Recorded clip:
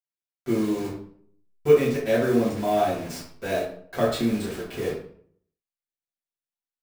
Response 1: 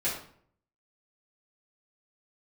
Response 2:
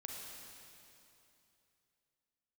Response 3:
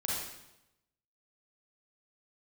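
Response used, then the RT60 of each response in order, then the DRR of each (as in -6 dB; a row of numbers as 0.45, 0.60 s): 1; 0.60, 2.9, 0.90 s; -10.5, -1.0, -5.5 dB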